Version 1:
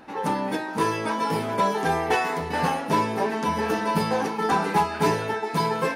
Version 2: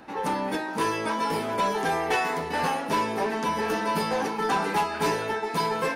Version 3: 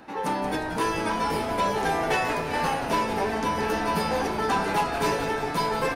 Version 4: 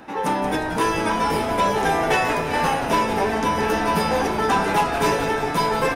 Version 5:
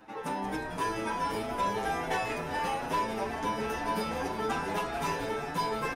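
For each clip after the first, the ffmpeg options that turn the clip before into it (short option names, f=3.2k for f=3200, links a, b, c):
-filter_complex "[0:a]acrossover=split=190|1600[a][b][c];[a]acompressor=threshold=-44dB:ratio=6[d];[b]asoftclip=type=tanh:threshold=-20.5dB[e];[d][e][c]amix=inputs=3:normalize=0"
-filter_complex "[0:a]asplit=8[a][b][c][d][e][f][g][h];[b]adelay=179,afreqshift=-140,volume=-9dB[i];[c]adelay=358,afreqshift=-280,volume=-13.6dB[j];[d]adelay=537,afreqshift=-420,volume=-18.2dB[k];[e]adelay=716,afreqshift=-560,volume=-22.7dB[l];[f]adelay=895,afreqshift=-700,volume=-27.3dB[m];[g]adelay=1074,afreqshift=-840,volume=-31.9dB[n];[h]adelay=1253,afreqshift=-980,volume=-36.5dB[o];[a][i][j][k][l][m][n][o]amix=inputs=8:normalize=0"
-af "bandreject=f=4.4k:w=11,volume=5dB"
-filter_complex "[0:a]asplit=2[a][b];[b]adelay=7.4,afreqshift=2.3[c];[a][c]amix=inputs=2:normalize=1,volume=-8.5dB"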